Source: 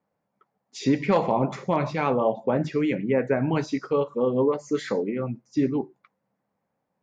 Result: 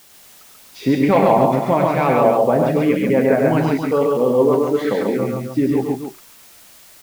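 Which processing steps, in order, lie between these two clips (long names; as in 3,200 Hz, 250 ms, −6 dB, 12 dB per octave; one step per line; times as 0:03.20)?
low-pass filter 3,500 Hz
parametric band 690 Hz +6 dB 0.37 octaves
background noise white −53 dBFS
loudspeakers that aren't time-aligned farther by 34 metres −6 dB, 47 metres −2 dB, 95 metres −8 dB
level +4.5 dB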